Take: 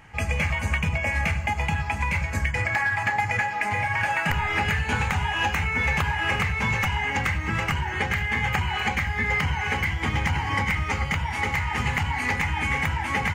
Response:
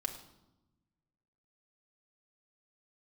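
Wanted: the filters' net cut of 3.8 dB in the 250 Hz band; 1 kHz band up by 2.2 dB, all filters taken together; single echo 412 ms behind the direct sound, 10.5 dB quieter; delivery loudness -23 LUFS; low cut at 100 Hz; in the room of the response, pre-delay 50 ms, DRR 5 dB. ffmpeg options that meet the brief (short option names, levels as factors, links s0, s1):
-filter_complex "[0:a]highpass=100,equalizer=f=250:t=o:g=-5.5,equalizer=f=1000:t=o:g=3,aecho=1:1:412:0.299,asplit=2[s0][s1];[1:a]atrim=start_sample=2205,adelay=50[s2];[s1][s2]afir=irnorm=-1:irlink=0,volume=0.501[s3];[s0][s3]amix=inputs=2:normalize=0,volume=0.944"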